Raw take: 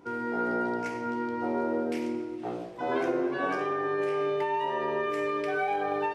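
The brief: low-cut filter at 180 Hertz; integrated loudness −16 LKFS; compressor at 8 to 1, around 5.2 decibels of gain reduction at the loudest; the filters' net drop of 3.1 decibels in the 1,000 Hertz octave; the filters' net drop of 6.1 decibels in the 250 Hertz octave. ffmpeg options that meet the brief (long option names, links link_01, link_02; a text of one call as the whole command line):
ffmpeg -i in.wav -af "highpass=180,equalizer=frequency=250:width_type=o:gain=-7.5,equalizer=frequency=1000:width_type=o:gain=-3.5,acompressor=threshold=-33dB:ratio=8,volume=21dB" out.wav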